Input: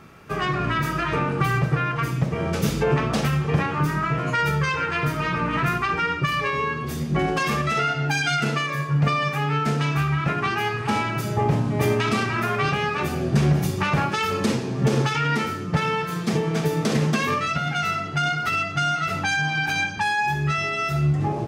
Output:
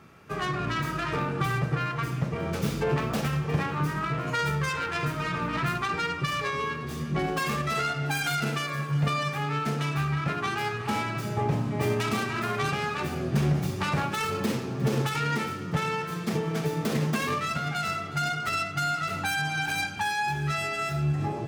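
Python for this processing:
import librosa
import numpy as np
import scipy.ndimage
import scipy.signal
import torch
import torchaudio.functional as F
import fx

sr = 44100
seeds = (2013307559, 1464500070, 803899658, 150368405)

y = fx.tracing_dist(x, sr, depth_ms=0.14)
y = scipy.signal.sosfilt(scipy.signal.butter(2, 46.0, 'highpass', fs=sr, output='sos'), y)
y = fx.echo_feedback(y, sr, ms=358, feedback_pct=59, wet_db=-17.5)
y = y * librosa.db_to_amplitude(-5.5)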